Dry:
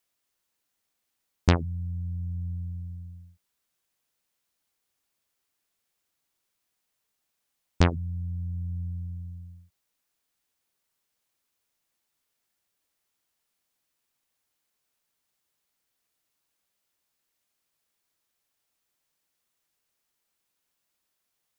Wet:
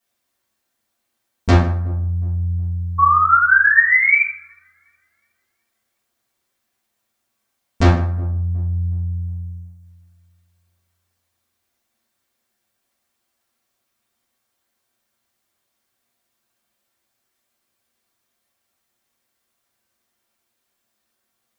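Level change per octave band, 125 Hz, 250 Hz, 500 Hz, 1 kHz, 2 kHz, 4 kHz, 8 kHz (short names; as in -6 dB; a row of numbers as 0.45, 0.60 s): +10.5 dB, +8.5 dB, +9.0 dB, +22.0 dB, +27.5 dB, +5.0 dB, n/a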